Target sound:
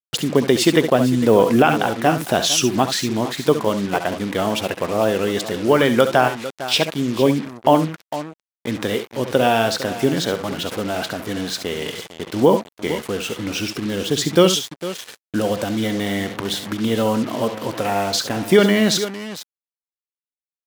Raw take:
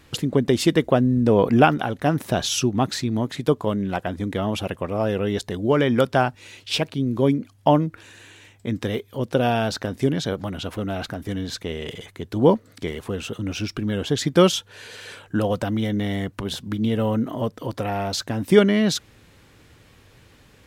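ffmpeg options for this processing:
-filter_complex "[0:a]agate=range=0.0794:threshold=0.0112:ratio=16:detection=peak,asettb=1/sr,asplit=3[s0][s1][s2];[s0]atrim=end=13.674[s3];[s1]atrim=start=13.67:end=15.84,asetpts=PTS-STARTPTS,afade=t=in:d=0.004:c=qsin,afade=t=out:st=2.166:d=0.004:c=qsin,equalizer=f=1200:t=o:w=2:g=-5.5[s4];[s2]atrim=start=15.836[s5];[s3][s4]acrossfade=d=0.004:c1=hsin:c2=qsin[s6];[s6][s5]acrossfade=d=0.004:c1=qsin:c2=hsin,aecho=1:1:64|70|454:0.168|0.266|0.188,acrusher=bits=5:mix=0:aa=0.5,highpass=f=310:p=1,alimiter=level_in=2.24:limit=0.891:release=50:level=0:latency=1,volume=0.891"

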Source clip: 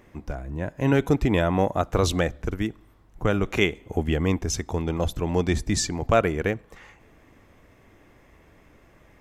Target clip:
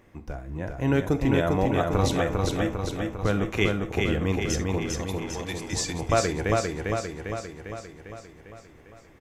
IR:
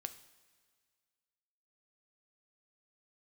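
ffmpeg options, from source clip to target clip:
-filter_complex "[0:a]asettb=1/sr,asplit=3[s0][s1][s2];[s0]atrim=end=4.874[s3];[s1]atrim=start=4.87:end=5.73,asetpts=PTS-STARTPTS,afade=t=in:d=0.004:c=qsin,afade=t=out:st=0.856:d=0.004:c=qsin,highpass=f=1400:p=1[s4];[s2]atrim=start=5.726[s5];[s3][s4]acrossfade=d=0.004:c1=hsin:c2=qsin[s6];[s6][s5]acrossfade=d=0.004:c1=qsin:c2=hsin,aecho=1:1:400|800|1200|1600|2000|2400|2800|3200|3600:0.708|0.418|0.246|0.145|0.0858|0.0506|0.0299|0.0176|0.0104[s7];[1:a]atrim=start_sample=2205,atrim=end_sample=3969[s8];[s7][s8]afir=irnorm=-1:irlink=0"

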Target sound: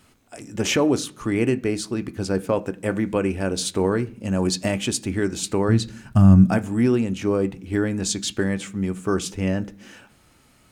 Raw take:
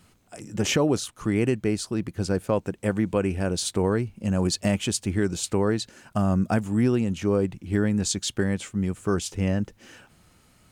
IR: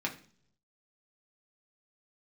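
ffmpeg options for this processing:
-filter_complex "[0:a]asplit=3[s0][s1][s2];[s0]afade=t=out:st=5.68:d=0.02[s3];[s1]asubboost=boost=8:cutoff=160,afade=t=in:st=5.68:d=0.02,afade=t=out:st=6.5:d=0.02[s4];[s2]afade=t=in:st=6.5:d=0.02[s5];[s3][s4][s5]amix=inputs=3:normalize=0,asplit=2[s6][s7];[s7]highpass=100[s8];[1:a]atrim=start_sample=2205[s9];[s8][s9]afir=irnorm=-1:irlink=0,volume=0.316[s10];[s6][s10]amix=inputs=2:normalize=0"

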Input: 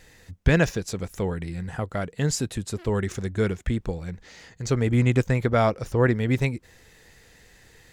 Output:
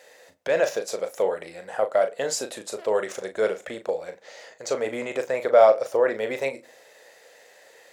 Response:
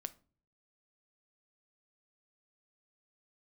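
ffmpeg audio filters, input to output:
-filter_complex "[0:a]alimiter=limit=0.188:level=0:latency=1:release=14,highpass=f=570:t=q:w=4.9,asplit=2[s0][s1];[1:a]atrim=start_sample=2205,adelay=37[s2];[s1][s2]afir=irnorm=-1:irlink=0,volume=0.531[s3];[s0][s3]amix=inputs=2:normalize=0"

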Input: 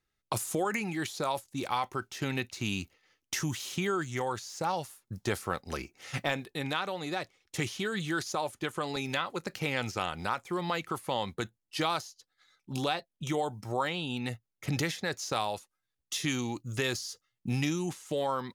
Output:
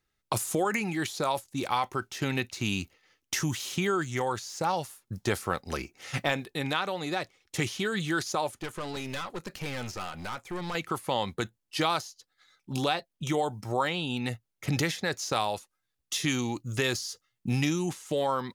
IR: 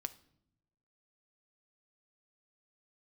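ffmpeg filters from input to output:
-filter_complex "[0:a]asettb=1/sr,asplit=3[s0][s1][s2];[s0]atrim=end=8.614[s3];[s1]atrim=start=8.61:end=10.75,asetpts=PTS-STARTPTS,afade=t=in:d=0.004:c=qsin,afade=t=out:st=2.136:d=0.004:c=qsin,aeval=exprs='(tanh(50.1*val(0)+0.45)-tanh(0.45))/50.1':c=same[s4];[s2]atrim=start=10.746[s5];[s3][s4]acrossfade=d=0.004:c1=hsin:c2=qsin[s6];[s6][s5]acrossfade=d=0.004:c1=qsin:c2=hsin,volume=1.41"

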